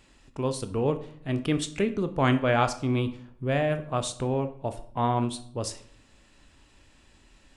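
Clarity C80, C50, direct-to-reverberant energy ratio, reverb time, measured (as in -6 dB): 17.5 dB, 13.5 dB, 9.0 dB, 0.60 s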